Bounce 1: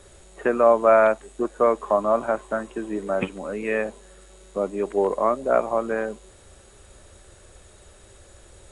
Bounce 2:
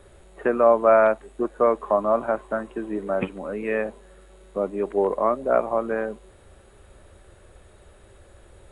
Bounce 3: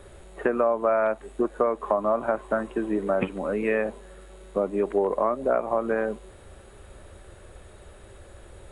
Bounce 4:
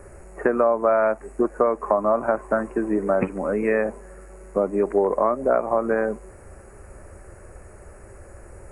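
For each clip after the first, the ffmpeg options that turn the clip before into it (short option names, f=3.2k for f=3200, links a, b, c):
-af "equalizer=f=6.4k:t=o:w=1.4:g=-13.5"
-af "acompressor=threshold=-23dB:ratio=6,volume=3.5dB"
-af "asuperstop=centerf=3500:order=4:qfactor=1.1,volume=3.5dB"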